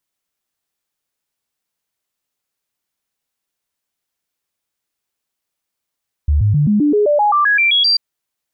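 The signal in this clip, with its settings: stepped sine 73.6 Hz up, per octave 2, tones 13, 0.13 s, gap 0.00 s -10 dBFS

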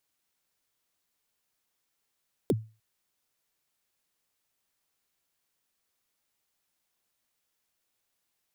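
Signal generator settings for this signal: kick drum length 0.30 s, from 510 Hz, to 110 Hz, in 37 ms, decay 0.32 s, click on, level -18 dB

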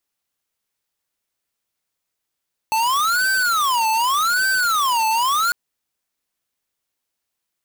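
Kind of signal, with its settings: siren wail 879–1550 Hz 0.85/s square -18.5 dBFS 2.80 s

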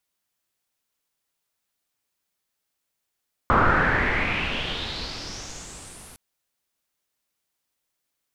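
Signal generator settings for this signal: swept filtered noise pink, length 2.66 s lowpass, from 1200 Hz, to 11000 Hz, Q 4.7, exponential, gain ramp -29 dB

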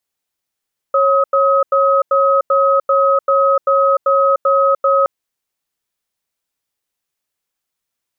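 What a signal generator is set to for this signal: cadence 549 Hz, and 1270 Hz, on 0.30 s, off 0.09 s, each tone -12.5 dBFS 4.12 s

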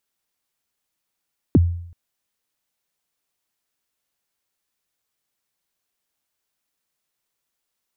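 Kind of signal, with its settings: kick drum length 0.38 s, from 380 Hz, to 86 Hz, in 30 ms, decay 0.66 s, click off, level -7.5 dB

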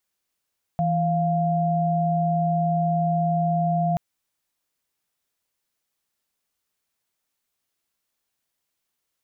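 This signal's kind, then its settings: chord E3/F5 sine, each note -22 dBFS 3.18 s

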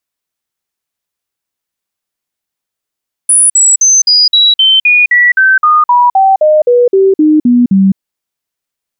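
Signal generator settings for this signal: stepped sine 9810 Hz down, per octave 3, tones 18, 0.21 s, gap 0.05 s -3.5 dBFS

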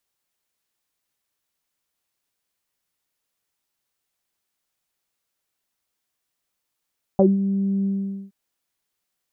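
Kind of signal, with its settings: synth note saw G3 24 dB/oct, low-pass 270 Hz, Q 4.3, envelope 1.5 oct, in 0.09 s, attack 1.8 ms, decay 0.18 s, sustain -9 dB, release 0.46 s, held 0.66 s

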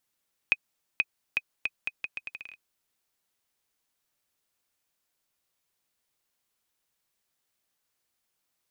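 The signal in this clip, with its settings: bouncing ball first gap 0.48 s, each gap 0.77, 2510 Hz, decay 41 ms -9 dBFS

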